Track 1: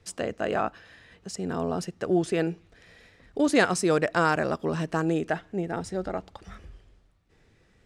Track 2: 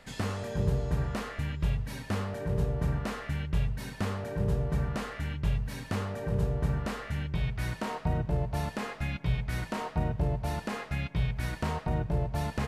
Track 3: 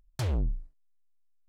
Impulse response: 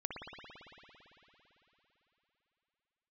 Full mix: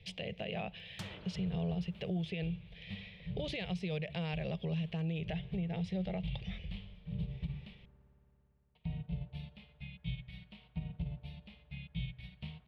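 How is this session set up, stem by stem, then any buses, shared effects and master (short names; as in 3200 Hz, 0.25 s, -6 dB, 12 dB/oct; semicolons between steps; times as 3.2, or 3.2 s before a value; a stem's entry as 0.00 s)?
+2.5 dB, 0.00 s, bus A, no send, de-esser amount 55%; graphic EQ 250/500/4000 Hz -8/+9/-6 dB
-7.5 dB, 0.80 s, muted 7.8–8.75, bus A, send -18.5 dB, upward expander 2.5:1, over -41 dBFS
-6.0 dB, 0.80 s, no bus, send -5.5 dB, compressor, threshold -29 dBFS, peak gain reduction 3.5 dB; weighting filter A; upward compressor, threshold -53 dBFS; auto duck -14 dB, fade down 1.80 s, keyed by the first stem
bus A: 0.0 dB, EQ curve 110 Hz 0 dB, 180 Hz +11 dB, 270 Hz -14 dB, 770 Hz -11 dB, 1400 Hz -24 dB, 2200 Hz +6 dB, 3400 Hz +13 dB, 7400 Hz -24 dB; compressor 4:1, threshold -32 dBFS, peak gain reduction 13 dB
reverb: on, RT60 3.7 s, pre-delay 56 ms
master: limiter -29 dBFS, peak gain reduction 11.5 dB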